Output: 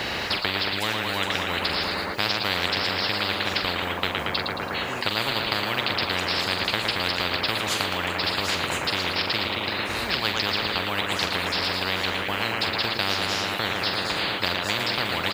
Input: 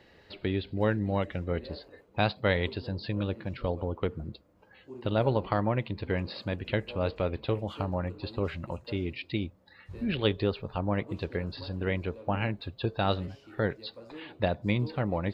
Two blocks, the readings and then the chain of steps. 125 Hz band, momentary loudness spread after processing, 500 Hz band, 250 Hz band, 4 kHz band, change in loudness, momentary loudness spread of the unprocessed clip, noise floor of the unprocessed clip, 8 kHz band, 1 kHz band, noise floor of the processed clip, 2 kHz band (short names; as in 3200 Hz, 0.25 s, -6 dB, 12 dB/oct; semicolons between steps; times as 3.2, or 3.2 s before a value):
-4.5 dB, 2 LU, 0.0 dB, -1.0 dB, +18.0 dB, +7.5 dB, 11 LU, -59 dBFS, n/a, +9.0 dB, -30 dBFS, +13.5 dB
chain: HPF 61 Hz; low shelf 490 Hz -5 dB; doubler 44 ms -12.5 dB; tape echo 0.113 s, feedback 90%, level -8.5 dB, low-pass 2200 Hz; spectral compressor 10:1; gain +5.5 dB